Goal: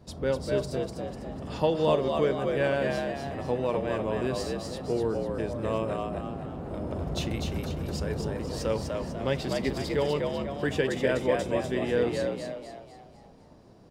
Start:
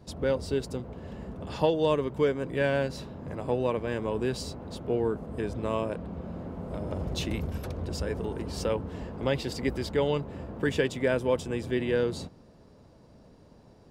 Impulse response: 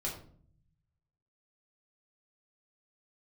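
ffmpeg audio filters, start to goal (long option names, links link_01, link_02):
-filter_complex "[0:a]asplit=7[link_01][link_02][link_03][link_04][link_05][link_06][link_07];[link_02]adelay=248,afreqshift=68,volume=-4dB[link_08];[link_03]adelay=496,afreqshift=136,volume=-11.1dB[link_09];[link_04]adelay=744,afreqshift=204,volume=-18.3dB[link_10];[link_05]adelay=992,afreqshift=272,volume=-25.4dB[link_11];[link_06]adelay=1240,afreqshift=340,volume=-32.5dB[link_12];[link_07]adelay=1488,afreqshift=408,volume=-39.7dB[link_13];[link_01][link_08][link_09][link_10][link_11][link_12][link_13]amix=inputs=7:normalize=0,asplit=2[link_14][link_15];[1:a]atrim=start_sample=2205[link_16];[link_15][link_16]afir=irnorm=-1:irlink=0,volume=-14dB[link_17];[link_14][link_17]amix=inputs=2:normalize=0,volume=-2dB"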